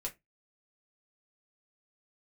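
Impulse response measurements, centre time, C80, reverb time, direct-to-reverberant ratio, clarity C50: 10 ms, 28.5 dB, 0.20 s, -1.0 dB, 18.0 dB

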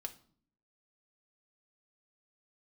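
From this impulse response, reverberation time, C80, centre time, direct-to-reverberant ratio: 0.50 s, 20.5 dB, 5 ms, 3.0 dB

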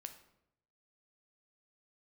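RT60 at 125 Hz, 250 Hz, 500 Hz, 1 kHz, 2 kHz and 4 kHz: 1.1, 0.85, 0.85, 0.75, 0.65, 0.55 s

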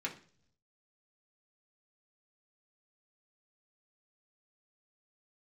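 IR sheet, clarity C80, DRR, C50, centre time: 17.5 dB, -2.5 dB, 12.5 dB, 12 ms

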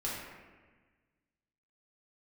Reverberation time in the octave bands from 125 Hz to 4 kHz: 1.8, 1.7, 1.4, 1.3, 1.4, 0.95 s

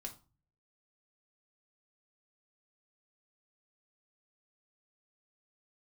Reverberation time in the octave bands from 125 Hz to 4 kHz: 0.75, 0.50, 0.35, 0.35, 0.25, 0.25 s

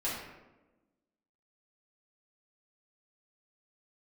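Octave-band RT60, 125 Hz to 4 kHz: 1.1, 1.5, 1.2, 0.95, 0.85, 0.60 s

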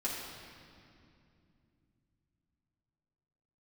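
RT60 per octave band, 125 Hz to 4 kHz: 4.7, 4.0, 2.8, 2.3, 2.3, 2.0 s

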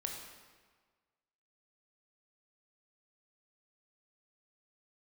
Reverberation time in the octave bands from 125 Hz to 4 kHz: 1.5, 1.5, 1.5, 1.5, 1.4, 1.2 s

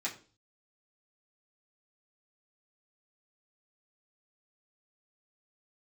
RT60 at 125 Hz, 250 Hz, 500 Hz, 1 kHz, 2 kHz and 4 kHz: 0.65, 0.50, 0.45, 0.35, 0.35, 0.40 s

